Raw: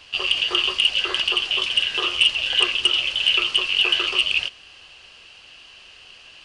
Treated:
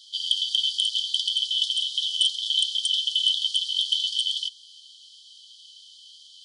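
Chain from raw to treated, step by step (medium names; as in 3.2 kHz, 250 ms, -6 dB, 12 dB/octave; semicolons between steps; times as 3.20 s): brick-wall FIR high-pass 3 kHz; trim +2.5 dB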